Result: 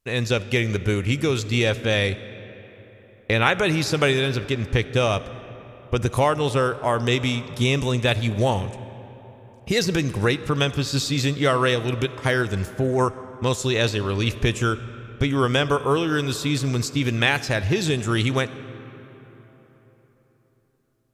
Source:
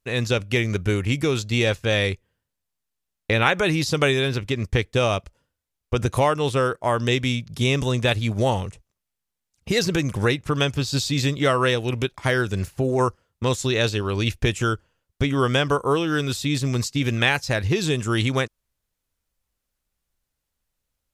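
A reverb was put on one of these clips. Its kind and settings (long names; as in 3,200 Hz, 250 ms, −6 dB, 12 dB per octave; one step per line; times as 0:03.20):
comb and all-pass reverb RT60 4.2 s, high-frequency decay 0.55×, pre-delay 15 ms, DRR 14 dB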